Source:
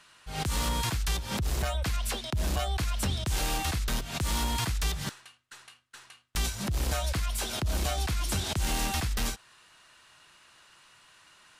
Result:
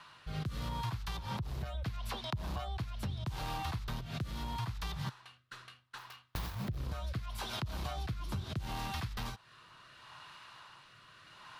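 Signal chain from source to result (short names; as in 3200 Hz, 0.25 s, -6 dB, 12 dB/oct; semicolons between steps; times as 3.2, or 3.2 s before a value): 5.98–6.77 self-modulated delay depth 0.88 ms; dynamic EQ 110 Hz, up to +4 dB, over -41 dBFS, Q 0.79; rotary speaker horn 0.75 Hz; graphic EQ 125/1000/4000/8000 Hz +10/+12/+5/-9 dB; compressor 4:1, threshold -39 dBFS, peak gain reduction 19 dB; gain +1 dB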